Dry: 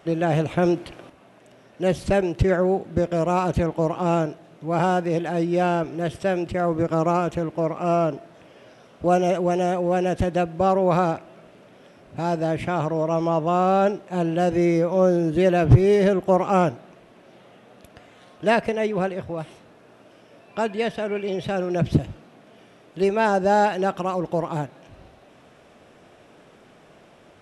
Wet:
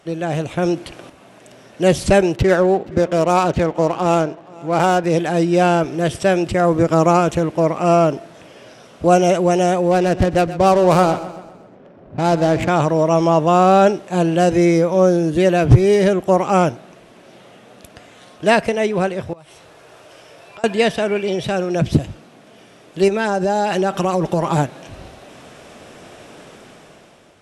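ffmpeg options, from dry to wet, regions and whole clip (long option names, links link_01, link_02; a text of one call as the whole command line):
ffmpeg -i in.wav -filter_complex "[0:a]asettb=1/sr,asplit=3[link_01][link_02][link_03];[link_01]atrim=end=2.364[link_04];[link_02]atrim=start=2.36:end=5.04,asetpts=PTS-STARTPTS,afade=type=in:duration=0.004:curve=qsin,afade=type=out:start_time=2.676:duration=0.004:curve=qsin,lowshelf=frequency=180:gain=-7.5,adynamicsmooth=sensitivity=6.5:basefreq=2400,aecho=1:1:474:0.0708,atrim=end_sample=118188[link_05];[link_03]atrim=start=5.036[link_06];[link_04][link_05]acrossfade=duration=0.004:curve1=hsin:curve2=qsin[link_07];[link_07][link_06]acrossfade=duration=0.004:curve1=qsin:curve2=hsin,asettb=1/sr,asplit=3[link_08][link_09][link_10];[link_08]atrim=end=9.914[link_11];[link_09]atrim=start=9.91:end=12.69,asetpts=PTS-STARTPTS,afade=type=in:duration=0.004:curve=qsin,afade=type=out:start_time=2.776:duration=0.004:curve=qsin,adynamicsmooth=sensitivity=5.5:basefreq=760,aecho=1:1:128|256|384|512|640:0.2|0.0978|0.0479|0.0235|0.0115,atrim=end_sample=122598[link_12];[link_10]atrim=start=12.686[link_13];[link_11][link_12]acrossfade=duration=0.004:curve1=hsin:curve2=qsin[link_14];[link_14][link_13]acrossfade=duration=0.004:curve1=qsin:curve2=hsin,asettb=1/sr,asplit=3[link_15][link_16][link_17];[link_15]atrim=end=19.334[link_18];[link_16]atrim=start=19.33:end=20.64,asetpts=PTS-STARTPTS,afade=type=in:duration=0.004:curve=qsin,afade=type=out:start_time=1.306:duration=0.004:curve=qsin,equalizer=frequency=230:width=1.8:gain=-14,acompressor=threshold=-48dB:ratio=5:attack=3.2:release=140:knee=1:detection=peak,asplit=2[link_19][link_20];[link_20]adelay=13,volume=-12dB[link_21];[link_19][link_21]amix=inputs=2:normalize=0,atrim=end_sample=57771[link_22];[link_17]atrim=start=20.636[link_23];[link_18][link_22]acrossfade=duration=0.004:curve1=hsin:curve2=qsin[link_24];[link_24][link_23]acrossfade=duration=0.004:curve1=qsin:curve2=hsin,asettb=1/sr,asplit=3[link_25][link_26][link_27];[link_25]atrim=end=23.084[link_28];[link_26]atrim=start=23.08:end=24.58,asetpts=PTS-STARTPTS,afade=type=in:duration=0.004:curve=qsin,afade=type=out:start_time=1.496:duration=0.004:curve=qsin,aecho=1:1:5.1:0.45,atrim=end_sample=66150,acompressor=threshold=-22dB:ratio=10:attack=3.2:release=140:knee=1:detection=peak[link_29];[link_27]atrim=start=24.576[link_30];[link_28][link_29]acrossfade=duration=0.004:curve1=hsin:curve2=qsin[link_31];[link_31][link_30]acrossfade=duration=0.004:curve1=qsin:curve2=hsin,equalizer=frequency=7800:width=0.53:gain=7,dynaudnorm=framelen=270:gausssize=7:maxgain=11.5dB,volume=-1dB" out.wav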